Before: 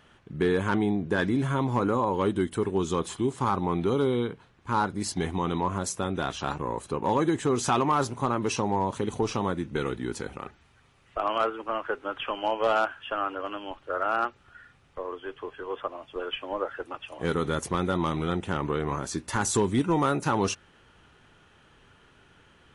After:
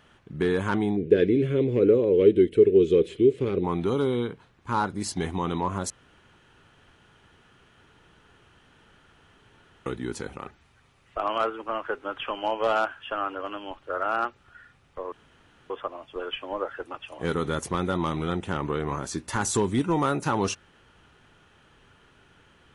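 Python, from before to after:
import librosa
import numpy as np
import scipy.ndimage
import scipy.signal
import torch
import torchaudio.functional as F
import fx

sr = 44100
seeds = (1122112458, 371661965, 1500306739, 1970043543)

y = fx.curve_eq(x, sr, hz=(250.0, 450.0, 900.0, 2400.0, 3900.0, 6400.0), db=(0, 14, -25, 4, -5, -15), at=(0.96, 3.63), fade=0.02)
y = fx.edit(y, sr, fx.room_tone_fill(start_s=5.9, length_s=3.96),
    fx.room_tone_fill(start_s=15.12, length_s=0.58), tone=tone)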